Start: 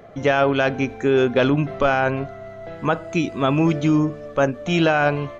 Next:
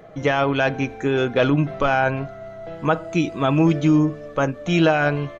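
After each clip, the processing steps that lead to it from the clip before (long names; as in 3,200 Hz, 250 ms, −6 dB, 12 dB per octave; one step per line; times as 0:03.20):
comb filter 6.3 ms, depth 37%
level −1 dB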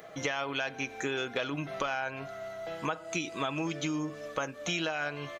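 spectral tilt +3.5 dB per octave
downward compressor, threshold −28 dBFS, peak gain reduction 13.5 dB
level −2 dB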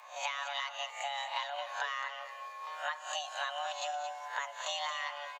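peak hold with a rise ahead of every peak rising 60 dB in 0.36 s
frequency shifter +430 Hz
single-tap delay 225 ms −9.5 dB
level −5.5 dB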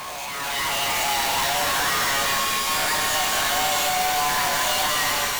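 sign of each sample alone
automatic gain control gain up to 9 dB
reverb with rising layers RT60 3.5 s, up +12 semitones, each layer −2 dB, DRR 4 dB
level +5 dB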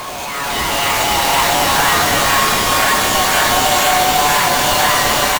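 in parallel at −5 dB: sample-and-hold swept by an LFO 14×, swing 100% 2 Hz
on the sum: single-tap delay 501 ms −3.5 dB
level +5 dB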